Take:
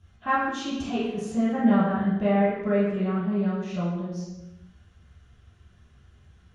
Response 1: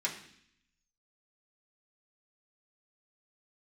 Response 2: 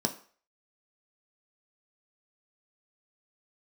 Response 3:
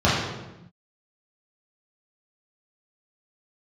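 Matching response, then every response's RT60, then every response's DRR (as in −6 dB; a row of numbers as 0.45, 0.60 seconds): 3; 0.65, 0.45, 0.95 seconds; −5.0, 3.5, −9.5 decibels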